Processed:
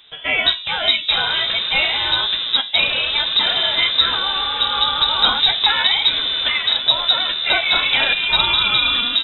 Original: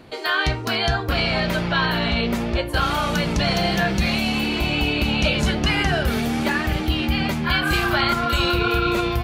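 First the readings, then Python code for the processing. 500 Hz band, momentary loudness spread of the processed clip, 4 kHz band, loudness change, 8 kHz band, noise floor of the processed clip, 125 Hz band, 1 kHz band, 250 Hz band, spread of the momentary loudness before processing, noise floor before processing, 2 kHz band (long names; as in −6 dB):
−6.0 dB, 4 LU, +11.5 dB, +5.5 dB, below −40 dB, −29 dBFS, −17.0 dB, +0.5 dB, −16.0 dB, 3 LU, −28 dBFS, +3.0 dB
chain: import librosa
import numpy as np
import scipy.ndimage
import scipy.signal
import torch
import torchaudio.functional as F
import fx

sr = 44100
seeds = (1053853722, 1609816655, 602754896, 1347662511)

y = fx.freq_invert(x, sr, carrier_hz=3800)
y = fx.upward_expand(y, sr, threshold_db=-31.0, expansion=1.5)
y = y * librosa.db_to_amplitude(5.0)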